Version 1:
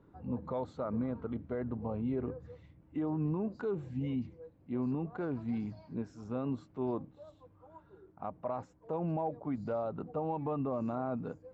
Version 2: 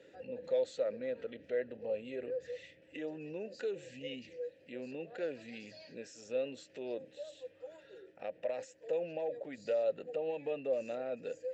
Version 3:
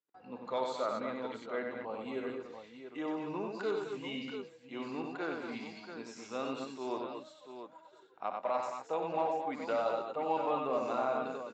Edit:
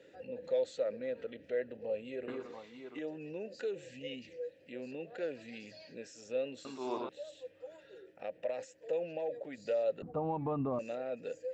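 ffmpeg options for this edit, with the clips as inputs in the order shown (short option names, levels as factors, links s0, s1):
-filter_complex "[2:a]asplit=2[s0][s1];[1:a]asplit=4[s2][s3][s4][s5];[s2]atrim=end=2.282[s6];[s0]atrim=start=2.278:end=2.992[s7];[s3]atrim=start=2.988:end=6.652[s8];[s1]atrim=start=6.648:end=7.092[s9];[s4]atrim=start=7.088:end=10.022[s10];[0:a]atrim=start=10.018:end=10.792[s11];[s5]atrim=start=10.788[s12];[s6][s7]acrossfade=d=0.004:c1=hsin:c2=hsin[s13];[s13][s8]acrossfade=d=0.004:c1=hsin:c2=hsin[s14];[s14][s9]acrossfade=d=0.004:c1=hsin:c2=hsin[s15];[s15][s10]acrossfade=d=0.004:c1=hsin:c2=hsin[s16];[s16][s11]acrossfade=d=0.004:c1=hsin:c2=hsin[s17];[s17][s12]acrossfade=d=0.004:c1=hsin:c2=hsin"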